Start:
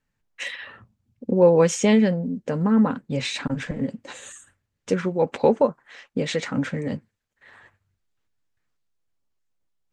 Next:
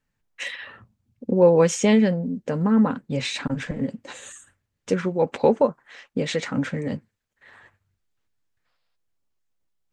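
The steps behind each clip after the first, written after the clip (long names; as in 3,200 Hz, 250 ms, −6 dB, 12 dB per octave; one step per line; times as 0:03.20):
gain on a spectral selection 0:08.66–0:08.96, 460–5,400 Hz +12 dB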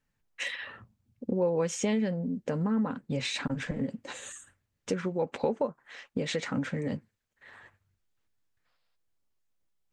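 downward compressor 2.5 to 1, threshold −27 dBFS, peak gain reduction 11 dB
level −2 dB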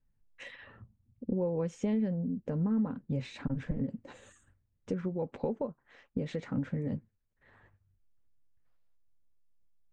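spectral tilt −3.5 dB per octave
level −9 dB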